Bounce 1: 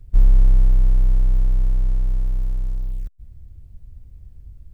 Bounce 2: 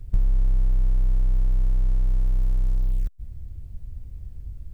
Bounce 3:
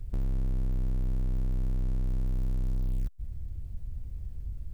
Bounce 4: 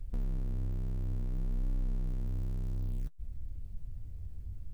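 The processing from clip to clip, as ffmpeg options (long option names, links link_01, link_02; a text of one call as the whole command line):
ffmpeg -i in.wav -af "acompressor=threshold=-22dB:ratio=6,volume=4.5dB" out.wav
ffmpeg -i in.wav -af "asoftclip=type=tanh:threshold=-26dB" out.wav
ffmpeg -i in.wav -af "flanger=delay=3.5:depth=8.4:regen=51:speed=0.58:shape=sinusoidal" out.wav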